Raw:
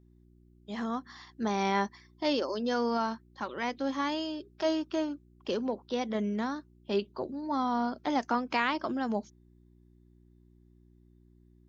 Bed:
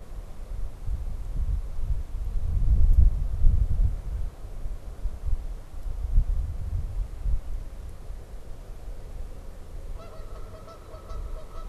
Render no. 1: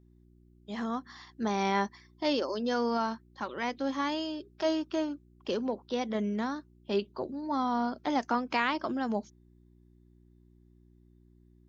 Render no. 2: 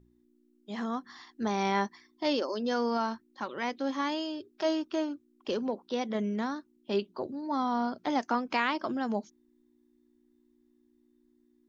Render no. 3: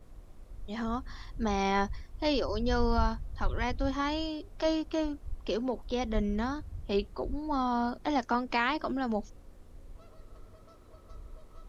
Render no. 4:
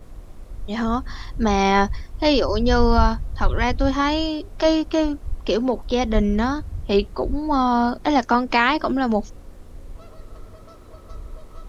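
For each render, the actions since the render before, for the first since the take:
nothing audible
de-hum 60 Hz, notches 3
add bed -12 dB
gain +11 dB

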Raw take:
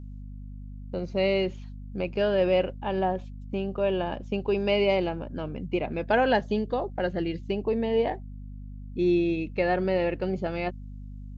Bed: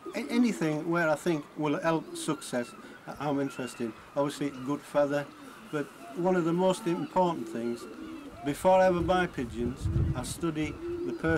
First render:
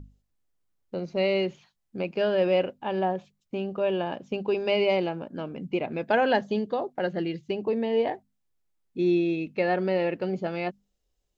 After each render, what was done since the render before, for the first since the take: notches 50/100/150/200/250 Hz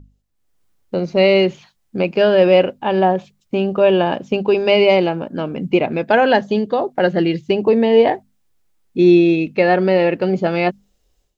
AGC gain up to 15 dB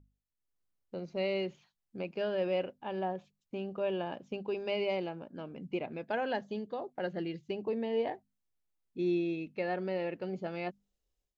gain -20 dB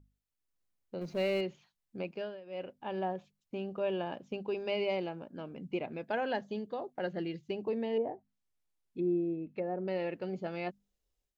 1.01–1.41 G.711 law mismatch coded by mu; 2.06–2.81 dip -20 dB, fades 0.35 s; 7.97–9.88 treble ducked by the level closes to 730 Hz, closed at -32 dBFS

